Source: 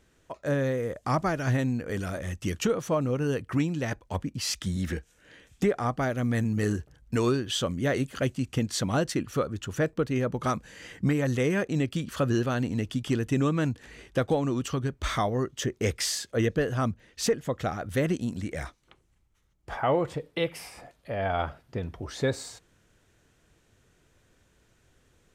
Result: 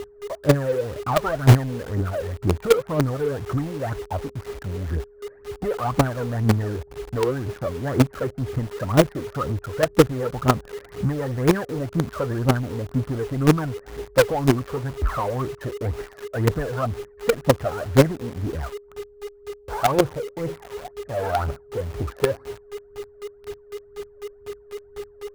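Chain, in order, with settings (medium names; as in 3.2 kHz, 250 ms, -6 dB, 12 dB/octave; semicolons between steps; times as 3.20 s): whistle 410 Hz -41 dBFS; peaking EQ 190 Hz -5.5 dB 0.41 oct; phaser 2 Hz, delay 2.4 ms, feedback 76%; inverse Chebyshev low-pass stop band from 2.9 kHz, stop band 40 dB; in parallel at -8 dB: companded quantiser 2-bit; on the sum: trim -1.5 dB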